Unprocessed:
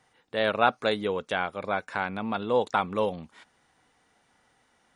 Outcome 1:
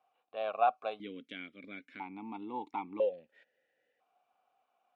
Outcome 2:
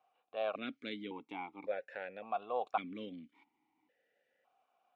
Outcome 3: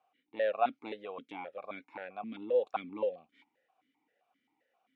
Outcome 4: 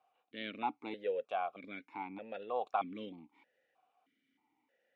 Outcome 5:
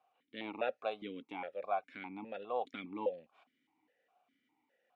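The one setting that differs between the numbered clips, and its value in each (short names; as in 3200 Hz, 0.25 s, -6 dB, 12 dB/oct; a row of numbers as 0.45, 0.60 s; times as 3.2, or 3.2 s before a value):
vowel sequencer, rate: 1, 1.8, 7.6, 3.2, 4.9 Hz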